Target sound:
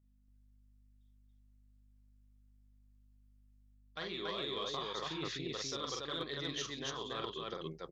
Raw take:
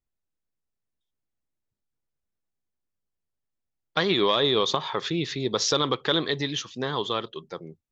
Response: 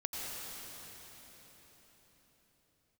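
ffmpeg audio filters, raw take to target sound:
-af "lowshelf=f=440:g=-4.5,bandreject=f=880:w=12,areverse,acompressor=threshold=0.0141:ratio=6,areverse,aeval=exprs='val(0)+0.000501*(sin(2*PI*50*n/s)+sin(2*PI*2*50*n/s)/2+sin(2*PI*3*50*n/s)/3+sin(2*PI*4*50*n/s)/4+sin(2*PI*5*50*n/s)/5)':c=same,aecho=1:1:43.73|282.8:0.708|0.891,aeval=exprs='0.0841*(cos(1*acos(clip(val(0)/0.0841,-1,1)))-cos(1*PI/2))+0.00376*(cos(3*acos(clip(val(0)/0.0841,-1,1)))-cos(3*PI/2))':c=same,volume=0.75"

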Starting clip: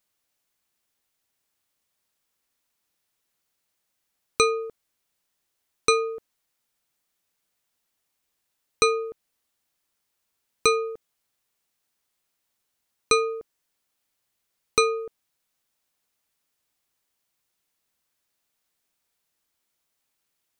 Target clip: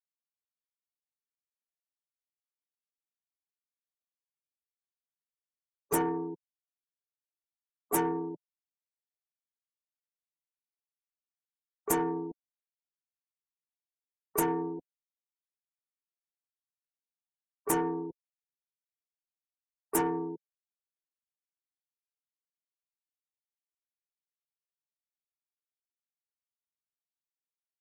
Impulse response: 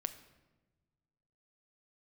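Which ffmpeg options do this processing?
-filter_complex "[0:a]acrossover=split=1300[s0][s1];[s1]aeval=exprs='(mod(6.31*val(0)+1,2)-1)/6.31':c=same[s2];[s0][s2]amix=inputs=2:normalize=0,asplit=4[s3][s4][s5][s6];[s4]asetrate=22050,aresample=44100,atempo=2,volume=0.708[s7];[s5]asetrate=35002,aresample=44100,atempo=1.25992,volume=0.398[s8];[s6]asetrate=55563,aresample=44100,atempo=0.793701,volume=0.355[s9];[s3][s7][s8][s9]amix=inputs=4:normalize=0,acrossover=split=560 2400:gain=0.126 1 0.0708[s10][s11][s12];[s10][s11][s12]amix=inputs=3:normalize=0,asetrate=32667,aresample=44100,equalizer=f=1800:t=o:w=2.7:g=-10.5,asplit=2[s13][s14];[s14]acompressor=threshold=0.0224:ratio=6,volume=0.841[s15];[s13][s15]amix=inputs=2:normalize=0,afftfilt=real='re*gte(hypot(re,im),0.00794)':imag='im*gte(hypot(re,im),0.00794)':win_size=1024:overlap=0.75,asoftclip=type=tanh:threshold=0.0794,aexciter=amount=6.8:drive=9.4:freq=6300"

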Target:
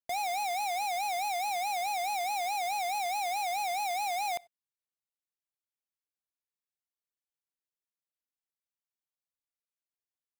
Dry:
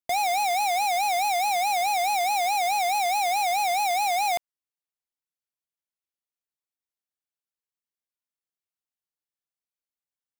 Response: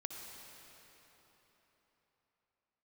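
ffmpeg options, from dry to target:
-filter_complex "[0:a]asplit=2[s0][s1];[1:a]atrim=start_sample=2205,afade=t=out:st=0.24:d=0.01,atrim=end_sample=11025,asetrate=83790,aresample=44100[s2];[s1][s2]afir=irnorm=-1:irlink=0,volume=0.376[s3];[s0][s3]amix=inputs=2:normalize=0,volume=0.355"

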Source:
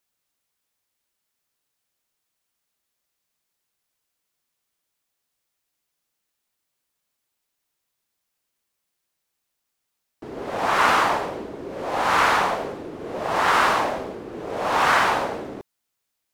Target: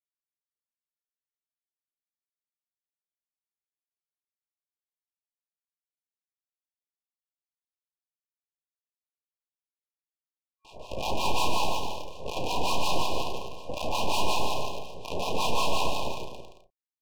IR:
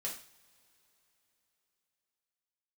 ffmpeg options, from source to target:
-filter_complex "[0:a]aphaser=in_gain=1:out_gain=1:delay=1.8:decay=0.38:speed=1.1:type=sinusoidal,acrossover=split=990[s0][s1];[s0]acontrast=24[s2];[s2][s1]amix=inputs=2:normalize=0,acrusher=bits=4:dc=4:mix=0:aa=0.000001,highpass=530,lowpass=4400,aeval=exprs='max(val(0),0)':c=same,acrossover=split=900[s3][s4];[s3]aeval=exprs='val(0)*(1-1/2+1/2*cos(2*PI*5.7*n/s))':c=same[s5];[s4]aeval=exprs='val(0)*(1-1/2-1/2*cos(2*PI*5.7*n/s))':c=same[s6];[s5][s6]amix=inputs=2:normalize=0,asoftclip=type=hard:threshold=0.0473,asplit=2[s7][s8];[s8]adelay=32,volume=0.355[s9];[s7][s9]amix=inputs=2:normalize=0,asplit=2[s10][s11];[s11]aecho=0:1:140|238|306.6|354.6|388.2:0.631|0.398|0.251|0.158|0.1[s12];[s10][s12]amix=inputs=2:normalize=0,asetrate=42336,aresample=44100,afftfilt=real='re*(1-between(b*sr/4096,1100,2400))':imag='im*(1-between(b*sr/4096,1100,2400))':win_size=4096:overlap=0.75,volume=1.41"

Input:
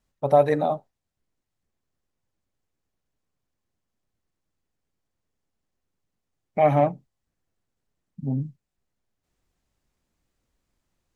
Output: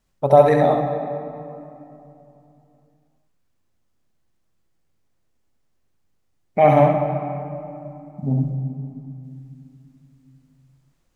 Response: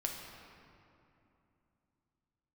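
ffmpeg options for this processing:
-filter_complex "[0:a]asplit=2[s0][s1];[1:a]atrim=start_sample=2205,adelay=67[s2];[s1][s2]afir=irnorm=-1:irlink=0,volume=0.668[s3];[s0][s3]amix=inputs=2:normalize=0,volume=1.68"

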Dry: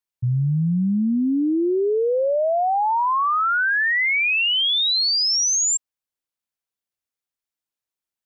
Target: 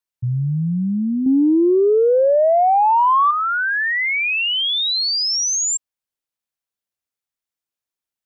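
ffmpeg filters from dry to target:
-filter_complex "[0:a]asettb=1/sr,asplit=3[s0][s1][s2];[s0]atrim=end=1.264[s3];[s1]atrim=start=1.26:end=3.31,asetpts=PTS-STARTPTS,afade=t=in:d=0.004:c=qsin,afade=t=out:st=2.046:d=0.004:c=qsin,acontrast=51[s4];[s2]atrim=start=3.306[s5];[s3][s4]acrossfade=d=0.004:c1=hsin:c2=qsin[s6];[s6][s5]acrossfade=d=0.004:c1=qsin:c2=hsin"

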